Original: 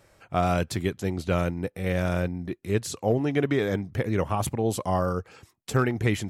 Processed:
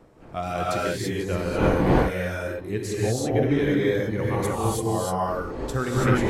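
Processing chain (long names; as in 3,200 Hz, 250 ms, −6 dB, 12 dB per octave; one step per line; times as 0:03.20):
wind on the microphone 510 Hz −32 dBFS
noise reduction from a noise print of the clip's start 6 dB
reverb whose tail is shaped and stops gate 360 ms rising, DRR −6 dB
level −4 dB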